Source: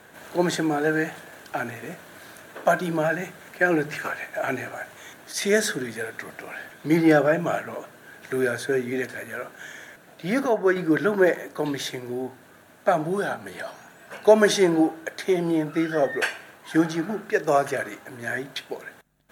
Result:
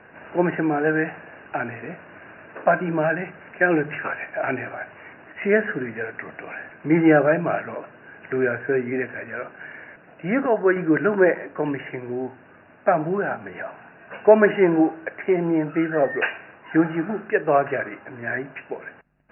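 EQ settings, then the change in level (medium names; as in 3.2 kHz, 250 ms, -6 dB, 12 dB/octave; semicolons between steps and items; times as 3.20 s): brick-wall FIR low-pass 2.9 kHz; +2.0 dB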